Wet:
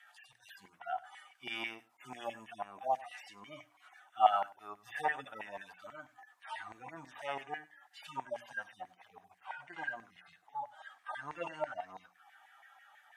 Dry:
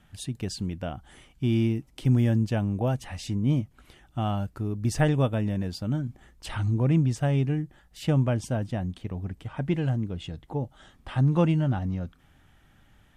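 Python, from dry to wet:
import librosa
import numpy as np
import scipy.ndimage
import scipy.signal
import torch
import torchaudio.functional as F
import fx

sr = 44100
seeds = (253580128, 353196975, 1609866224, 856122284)

y = fx.hpss_only(x, sr, part='harmonic')
y = fx.filter_lfo_highpass(y, sr, shape='saw_down', hz=6.1, low_hz=940.0, high_hz=2000.0, q=4.8)
y = fx.peak_eq(y, sr, hz=720.0, db=14.0, octaves=0.56)
y = fx.hum_notches(y, sr, base_hz=60, count=5)
y = y + 10.0 ** (-20.5 / 20.0) * np.pad(y, (int(97 * sr / 1000.0), 0))[:len(y)]
y = y * 10.0 ** (-1.0 / 20.0)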